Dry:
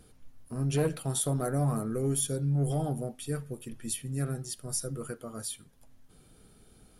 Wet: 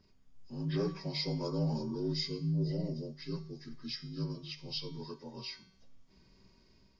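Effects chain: frequency axis rescaled in octaves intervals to 81%; 2.13–4.38 s: dynamic bell 1.1 kHz, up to -5 dB, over -49 dBFS, Q 0.78; level rider gain up to 4.5 dB; bass shelf 230 Hz +3.5 dB; hum notches 50/100/150 Hz; feedback comb 190 Hz, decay 0.68 s, harmonics all, mix 70%

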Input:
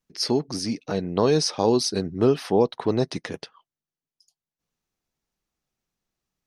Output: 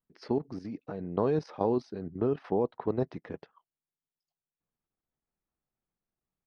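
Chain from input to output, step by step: low-pass 1.6 kHz 12 dB/octave; level held to a coarse grid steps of 11 dB; trim -4 dB

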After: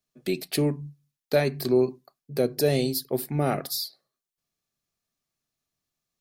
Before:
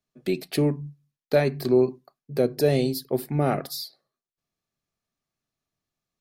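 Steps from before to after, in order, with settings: treble shelf 3.4 kHz +7.5 dB; trim -2 dB

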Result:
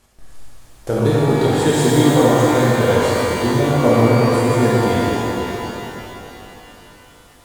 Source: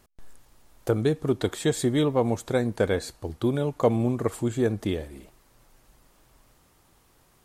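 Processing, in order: CVSD coder 64 kbps; pitch-shifted reverb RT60 3.2 s, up +12 st, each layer -8 dB, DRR -8 dB; trim +1.5 dB

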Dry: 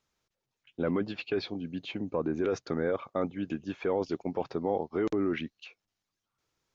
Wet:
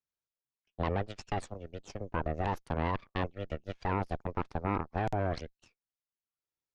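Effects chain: Chebyshev shaper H 3 -9 dB, 4 -6 dB, 5 -27 dB, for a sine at -17 dBFS; trim -4 dB

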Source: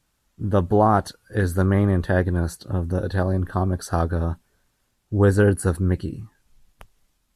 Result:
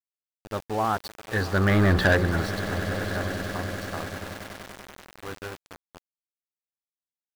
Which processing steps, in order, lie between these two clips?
Doppler pass-by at 1.93 s, 9 m/s, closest 1.5 m; steep low-pass 5.6 kHz 96 dB/octave; tilt shelf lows -6 dB, about 840 Hz; hum notches 60/120/180/240/300/360/420/480/540 Hz; in parallel at -8.5 dB: saturation -25.5 dBFS, distortion -9 dB; on the sum: waveshaping leveller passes 2; on a send: echo with a slow build-up 96 ms, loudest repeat 8, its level -17.5 dB; on the sum: small samples zeroed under -33.5 dBFS

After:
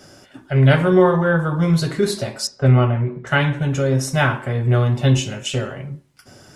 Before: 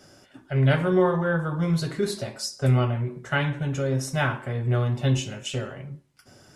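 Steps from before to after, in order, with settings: 2.47–3.27 s: low-pass 2.7 kHz 12 dB/octave; trim +7 dB

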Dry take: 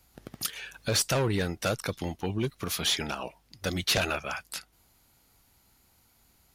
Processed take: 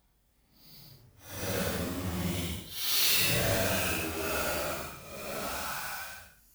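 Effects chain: square wave that keeps the level; Paulstretch 6.2×, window 0.10 s, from 3.41 s; treble shelf 10 kHz +10 dB; trim -7.5 dB

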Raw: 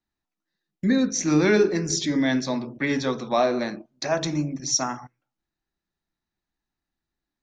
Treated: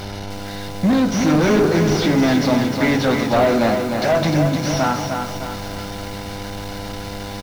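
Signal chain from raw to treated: one-bit delta coder 32 kbps, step -38 dBFS; comb 1.4 ms, depth 34%; waveshaping leveller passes 3; mains buzz 100 Hz, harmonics 10, -31 dBFS -4 dB/octave; bit-crushed delay 304 ms, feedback 55%, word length 6-bit, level -5 dB

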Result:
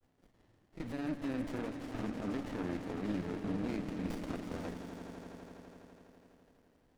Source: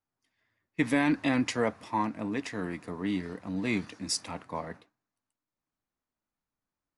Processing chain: compression, threshold -30 dBFS, peak gain reduction 9 dB; peak limiter -29 dBFS, peak gain reduction 9 dB; upward compressor, threshold -53 dBFS; granulator 100 ms, grains 20 per s, spray 21 ms, pitch spread up and down by 0 st; echo with a slow build-up 83 ms, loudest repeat 5, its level -13 dB; sliding maximum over 33 samples; trim +1.5 dB

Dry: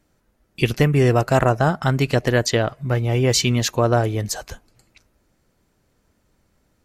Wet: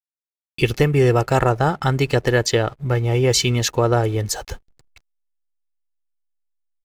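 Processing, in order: comb 2.3 ms, depth 40%; in parallel at -2 dB: compression 5:1, threshold -27 dBFS, peak gain reduction 14 dB; on the sum: hysteresis with a dead band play -37.5 dBFS; trim -1.5 dB

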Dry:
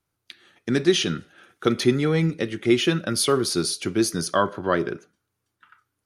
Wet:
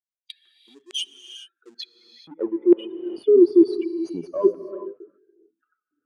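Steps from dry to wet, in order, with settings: spectral contrast enhancement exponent 3.1; reverse; compression 12:1, threshold -28 dBFS, peak gain reduction 15 dB; reverse; LFO high-pass square 1.1 Hz 310–2600 Hz; in parallel at -3.5 dB: hysteresis with a dead band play -27.5 dBFS; on the sum: band-pass sweep 7.5 kHz -> 360 Hz, 1.72–2.67 s; gated-style reverb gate 450 ms rising, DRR 10.5 dB; trim +8.5 dB

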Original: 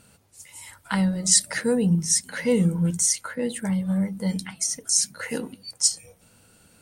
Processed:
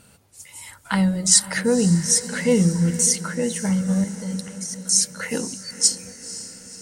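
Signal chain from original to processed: 4.04–4.85 s: level held to a coarse grid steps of 17 dB; echo that smears into a reverb 510 ms, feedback 57%, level -14 dB; trim +3 dB

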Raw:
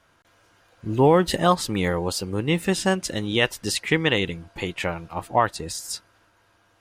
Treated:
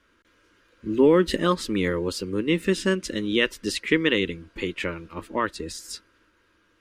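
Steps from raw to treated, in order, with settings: treble shelf 4.4 kHz -12 dB; static phaser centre 310 Hz, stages 4; trim +3 dB

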